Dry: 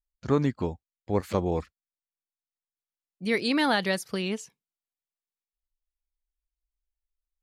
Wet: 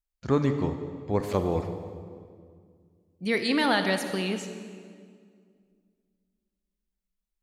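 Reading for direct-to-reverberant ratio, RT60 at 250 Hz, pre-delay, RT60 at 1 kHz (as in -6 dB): 7.0 dB, 2.7 s, 32 ms, 1.9 s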